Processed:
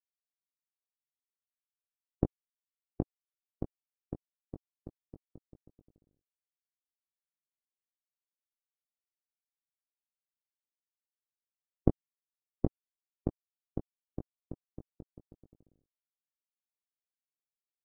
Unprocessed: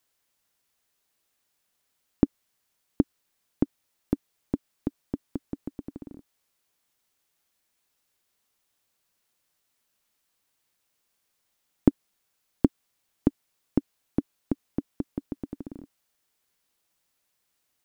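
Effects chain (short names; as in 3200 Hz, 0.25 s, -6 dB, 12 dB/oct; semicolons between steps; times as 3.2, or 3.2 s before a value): low-pass opened by the level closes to 740 Hz, open at -28 dBFS; graphic EQ 125/250/1000 Hz +4/-12/+6 dB; loudest bins only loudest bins 16; power-law curve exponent 2; doubler 19 ms -7 dB; gain +3 dB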